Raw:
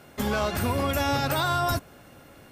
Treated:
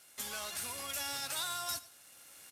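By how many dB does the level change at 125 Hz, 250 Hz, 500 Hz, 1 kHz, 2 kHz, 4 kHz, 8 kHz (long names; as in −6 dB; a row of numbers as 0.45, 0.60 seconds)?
−29.5, −26.5, −21.5, −16.5, −12.0, −6.0, +1.0 decibels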